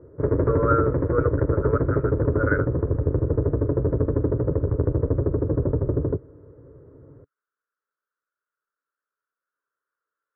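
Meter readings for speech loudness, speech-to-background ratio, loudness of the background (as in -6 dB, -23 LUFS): -28.0 LUFS, -4.0 dB, -24.0 LUFS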